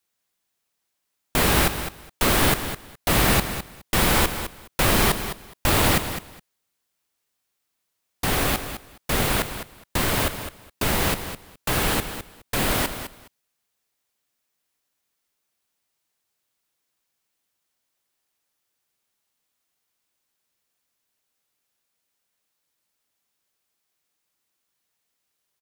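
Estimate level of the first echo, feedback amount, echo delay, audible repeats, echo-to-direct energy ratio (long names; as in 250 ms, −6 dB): −10.5 dB, 17%, 208 ms, 2, −10.5 dB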